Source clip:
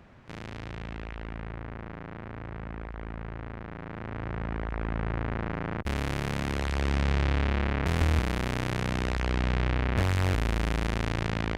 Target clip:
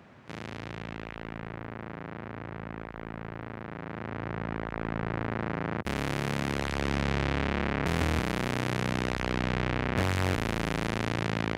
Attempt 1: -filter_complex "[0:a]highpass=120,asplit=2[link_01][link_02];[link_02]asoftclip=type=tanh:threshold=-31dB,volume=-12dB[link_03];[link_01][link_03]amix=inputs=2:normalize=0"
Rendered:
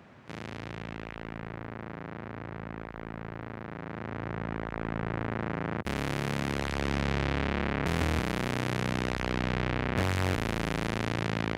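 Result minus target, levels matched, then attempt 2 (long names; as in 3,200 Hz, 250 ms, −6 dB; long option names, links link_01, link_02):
soft clipping: distortion +10 dB
-filter_complex "[0:a]highpass=120,asplit=2[link_01][link_02];[link_02]asoftclip=type=tanh:threshold=-19.5dB,volume=-12dB[link_03];[link_01][link_03]amix=inputs=2:normalize=0"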